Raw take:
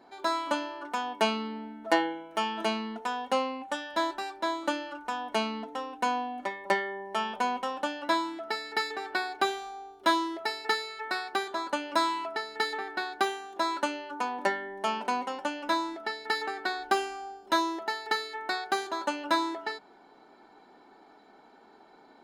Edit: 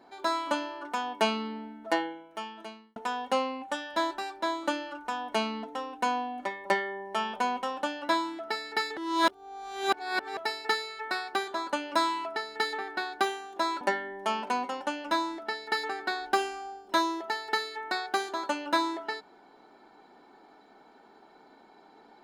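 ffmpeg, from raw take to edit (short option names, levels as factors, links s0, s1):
-filter_complex "[0:a]asplit=5[s0][s1][s2][s3][s4];[s0]atrim=end=2.96,asetpts=PTS-STARTPTS,afade=t=out:st=1.5:d=1.46[s5];[s1]atrim=start=2.96:end=8.972,asetpts=PTS-STARTPTS,afade=t=in:d=0.004:c=hsin[s6];[s2]atrim=start=8.968:end=10.372,asetpts=PTS-STARTPTS,areverse[s7];[s3]atrim=start=10.368:end=13.812[s8];[s4]atrim=start=14.388[s9];[s5][s6]concat=n=2:v=0:a=1[s10];[s10][s7]acrossfade=d=0.004:c1=hsin:c2=hsin[s11];[s11][s8]acrossfade=d=0.004:c1=hsin:c2=hsin[s12];[s12][s9]acrossfade=d=0.004:c1=hsin:c2=hsin"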